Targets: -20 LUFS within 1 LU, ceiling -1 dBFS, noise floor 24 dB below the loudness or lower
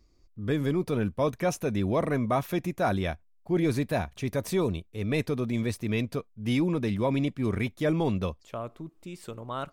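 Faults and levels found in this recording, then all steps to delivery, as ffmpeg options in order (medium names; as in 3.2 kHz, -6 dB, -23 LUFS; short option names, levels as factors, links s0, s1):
loudness -29.0 LUFS; peak level -16.0 dBFS; loudness target -20.0 LUFS
-> -af "volume=2.82"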